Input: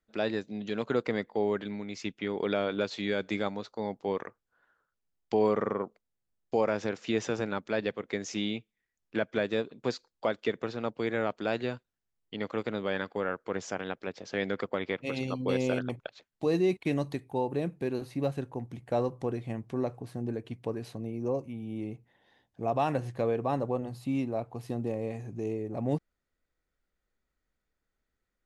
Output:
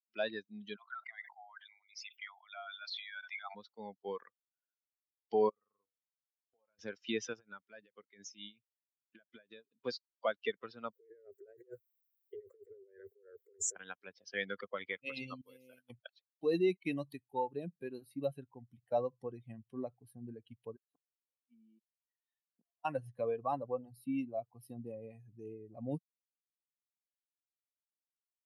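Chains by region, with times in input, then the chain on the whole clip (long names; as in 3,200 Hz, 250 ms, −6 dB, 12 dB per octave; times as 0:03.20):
0:00.76–0:03.55: spectral envelope exaggerated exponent 1.5 + Butterworth high-pass 670 Hz 96 dB per octave + level that may fall only so fast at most 40 dB per second
0:05.49–0:06.79: downward compressor 5 to 1, threshold −39 dBFS + tuned comb filter 97 Hz, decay 0.62 s, harmonics odd, mix 70%
0:07.33–0:09.71: downward compressor 12 to 1, threshold −31 dBFS + amplitude tremolo 4.5 Hz, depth 67%
0:10.93–0:13.76: drawn EQ curve 100 Hz 0 dB, 180 Hz −22 dB, 260 Hz −28 dB, 390 Hz +12 dB, 940 Hz −22 dB, 1,900 Hz −6 dB, 3,000 Hz −24 dB, 5,400 Hz −12 dB, 7,800 Hz +12 dB + compressor whose output falls as the input rises −39 dBFS
0:15.41–0:15.90: linear delta modulator 64 kbit/s, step −39.5 dBFS + downward expander −24 dBFS + downward compressor 2 to 1, threshold −41 dBFS
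0:20.76–0:22.85: gate with flip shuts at −28 dBFS, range −39 dB + high-pass filter 160 Hz 24 dB per octave + downward compressor, threshold −42 dBFS
whole clip: spectral dynamics exaggerated over time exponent 2; high-pass filter 110 Hz; low-shelf EQ 290 Hz −10 dB; level +1.5 dB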